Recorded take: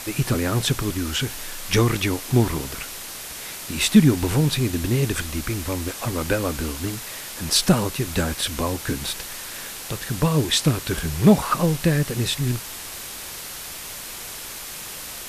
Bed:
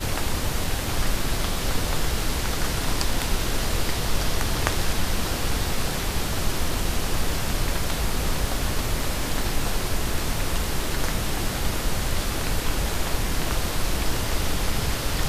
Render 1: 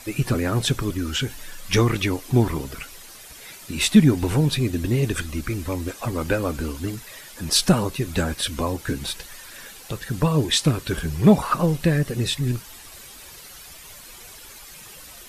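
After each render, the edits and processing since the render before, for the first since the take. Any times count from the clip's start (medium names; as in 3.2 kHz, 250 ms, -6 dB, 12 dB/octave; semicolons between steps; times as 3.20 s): noise reduction 11 dB, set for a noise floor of -35 dBFS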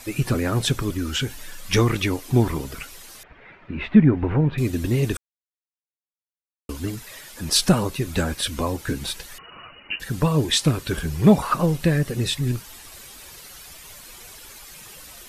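3.23–4.58 s: low-pass 2.2 kHz 24 dB/octave; 5.17–6.69 s: mute; 9.38–10.00 s: frequency inversion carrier 2.9 kHz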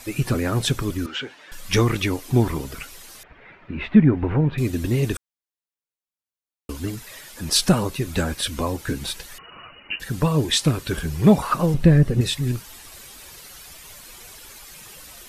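1.06–1.52 s: band-pass 360–3000 Hz; 11.74–12.21 s: tilt EQ -2.5 dB/octave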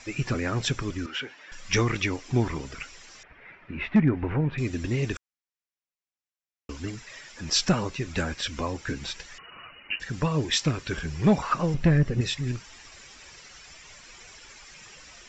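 hard clipper -7 dBFS, distortion -23 dB; rippled Chebyshev low-pass 7.5 kHz, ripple 6 dB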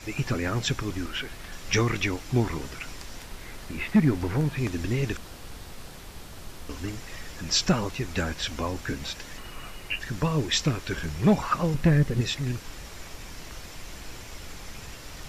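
add bed -17 dB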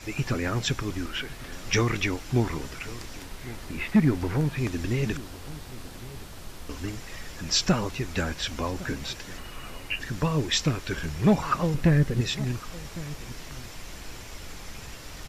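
echo from a far wall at 190 m, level -17 dB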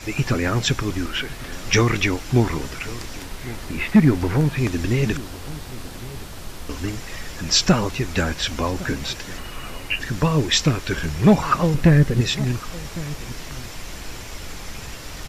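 trim +6.5 dB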